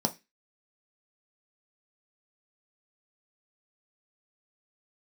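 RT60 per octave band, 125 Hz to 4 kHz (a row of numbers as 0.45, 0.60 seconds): 0.25, 0.25, 0.20, 0.20, 0.30, 0.30 seconds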